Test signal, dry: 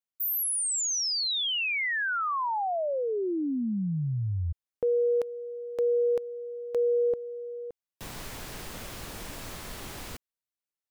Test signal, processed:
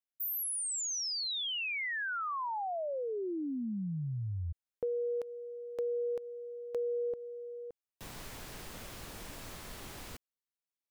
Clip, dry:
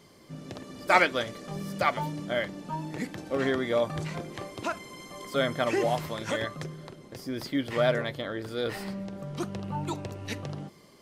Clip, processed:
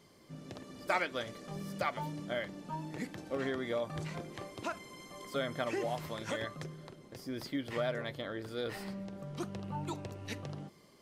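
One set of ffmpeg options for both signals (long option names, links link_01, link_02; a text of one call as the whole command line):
ffmpeg -i in.wav -af "acompressor=threshold=-29dB:ratio=2:attack=47:release=391:knee=1:detection=peak,volume=-6dB" out.wav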